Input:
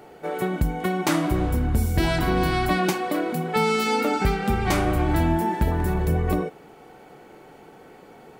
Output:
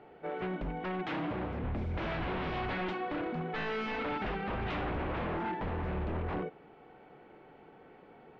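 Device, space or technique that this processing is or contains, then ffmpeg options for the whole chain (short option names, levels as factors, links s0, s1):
synthesiser wavefolder: -filter_complex "[0:a]aeval=exprs='0.0891*(abs(mod(val(0)/0.0891+3,4)-2)-1)':c=same,lowpass=f=3200:w=0.5412,lowpass=f=3200:w=1.3066,asettb=1/sr,asplit=3[s0][s1][s2];[s0]atrim=end=1.064[s3];[s1]atrim=start=1.06:end=1.64,asetpts=PTS-STARTPTS,afade=t=in:d=0.004:c=qsin,afade=t=out:st=0.576:d=0.004:c=qsin,highpass=87[s4];[s2]atrim=start=1.636[s5];[s3][s4]acrossfade=d=0.004:c1=hsin:c2=qsin[s6];[s6][s5]acrossfade=d=0.004:c1=qsin:c2=hsin,volume=0.376"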